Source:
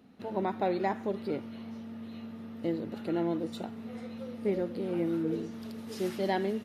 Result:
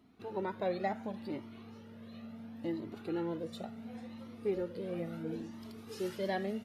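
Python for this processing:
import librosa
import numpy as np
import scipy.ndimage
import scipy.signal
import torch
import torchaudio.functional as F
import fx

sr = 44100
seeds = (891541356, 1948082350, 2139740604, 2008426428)

y = fx.comb_cascade(x, sr, direction='rising', hz=0.71)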